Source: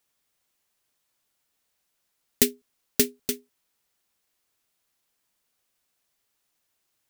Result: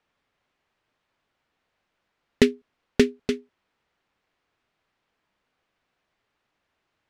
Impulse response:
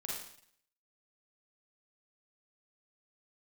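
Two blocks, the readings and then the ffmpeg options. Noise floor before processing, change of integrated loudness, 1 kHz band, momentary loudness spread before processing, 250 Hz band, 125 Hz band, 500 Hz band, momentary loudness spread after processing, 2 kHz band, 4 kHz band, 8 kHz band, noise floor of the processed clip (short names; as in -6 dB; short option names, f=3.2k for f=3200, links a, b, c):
-77 dBFS, +1.0 dB, +7.5 dB, 8 LU, +7.5 dB, +7.5 dB, +7.5 dB, 9 LU, +5.5 dB, -1.5 dB, -13.0 dB, -79 dBFS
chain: -af "lowpass=2.4k,volume=7.5dB"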